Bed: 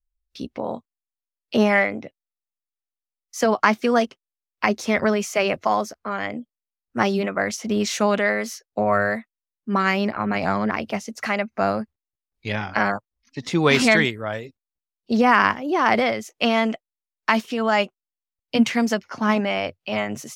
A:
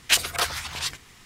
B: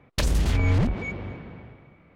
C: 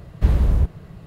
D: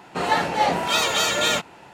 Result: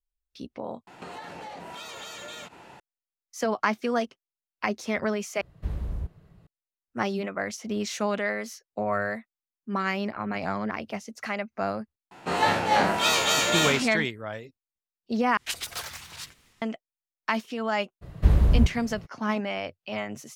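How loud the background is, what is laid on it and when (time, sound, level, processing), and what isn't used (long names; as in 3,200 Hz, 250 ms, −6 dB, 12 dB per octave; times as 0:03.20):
bed −7.5 dB
0:00.87: overwrite with D −2.5 dB + downward compressor 16 to 1, threshold −34 dBFS
0:05.41: overwrite with C −14.5 dB
0:12.11: mix in D −3.5 dB + peak hold with a decay on every bin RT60 0.45 s
0:15.37: overwrite with A −13 dB + delay with pitch and tempo change per echo 161 ms, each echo +4 semitones, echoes 2
0:18.01: mix in C −2 dB, fades 0.02 s
not used: B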